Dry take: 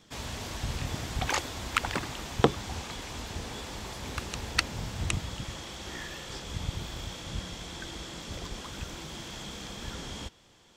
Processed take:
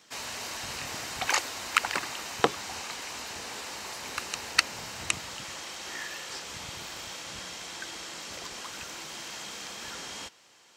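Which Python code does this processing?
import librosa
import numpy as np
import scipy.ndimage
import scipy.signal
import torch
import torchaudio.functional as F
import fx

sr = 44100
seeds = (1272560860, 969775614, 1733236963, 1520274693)

y = fx.highpass(x, sr, hz=1000.0, slope=6)
y = fx.notch(y, sr, hz=3400.0, q=8.2)
y = F.gain(torch.from_numpy(y), 5.0).numpy()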